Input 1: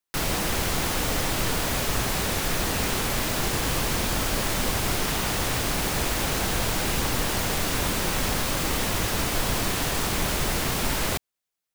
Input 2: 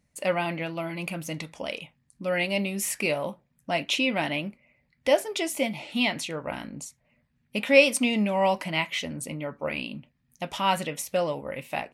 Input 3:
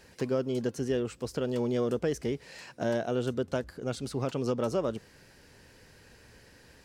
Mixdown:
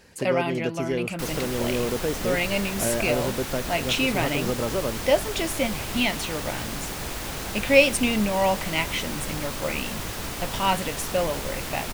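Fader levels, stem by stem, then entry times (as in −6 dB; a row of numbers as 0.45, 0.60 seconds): −6.5, +1.0, +2.0 decibels; 1.05, 0.00, 0.00 seconds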